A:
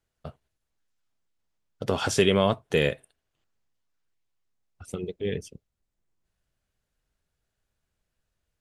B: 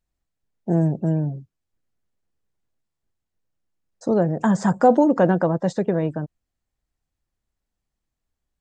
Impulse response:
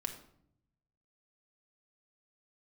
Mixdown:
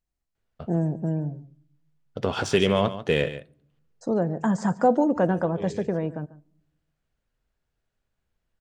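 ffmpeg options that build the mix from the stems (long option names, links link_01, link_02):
-filter_complex "[0:a]adynamicsmooth=sensitivity=2:basefreq=5000,adelay=350,volume=-1dB,asplit=3[link_01][link_02][link_03];[link_02]volume=-14.5dB[link_04];[link_03]volume=-11.5dB[link_05];[1:a]bandreject=frequency=3600:width=20,volume=-6dB,asplit=4[link_06][link_07][link_08][link_09];[link_07]volume=-16dB[link_10];[link_08]volume=-17.5dB[link_11];[link_09]apad=whole_len=395080[link_12];[link_01][link_12]sidechaincompress=threshold=-39dB:ratio=8:attack=16:release=183[link_13];[2:a]atrim=start_sample=2205[link_14];[link_04][link_10]amix=inputs=2:normalize=0[link_15];[link_15][link_14]afir=irnorm=-1:irlink=0[link_16];[link_05][link_11]amix=inputs=2:normalize=0,aecho=0:1:143:1[link_17];[link_13][link_06][link_16][link_17]amix=inputs=4:normalize=0"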